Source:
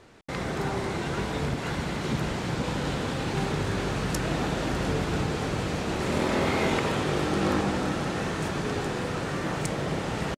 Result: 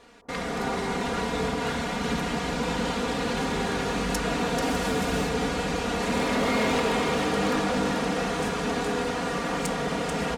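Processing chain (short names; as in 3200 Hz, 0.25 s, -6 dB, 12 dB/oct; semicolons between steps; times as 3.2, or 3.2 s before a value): low shelf 330 Hz -5.5 dB; comb 4.2 ms, depth 87%; echo with dull and thin repeats by turns 0.219 s, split 1100 Hz, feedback 56%, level -2 dB; overloaded stage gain 19.5 dB; 4.62–5.29 high shelf 10000 Hz +9.5 dB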